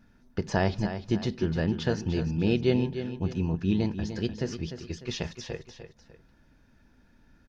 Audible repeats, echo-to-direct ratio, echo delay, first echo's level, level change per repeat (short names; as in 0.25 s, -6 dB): 2, -9.5 dB, 0.299 s, -10.0 dB, -8.0 dB